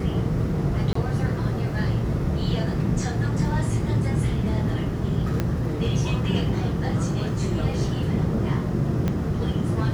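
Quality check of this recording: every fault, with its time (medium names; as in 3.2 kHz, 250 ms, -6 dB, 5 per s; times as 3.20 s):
0.93–0.95 s: dropout 24 ms
5.40 s: pop -11 dBFS
9.08 s: pop -13 dBFS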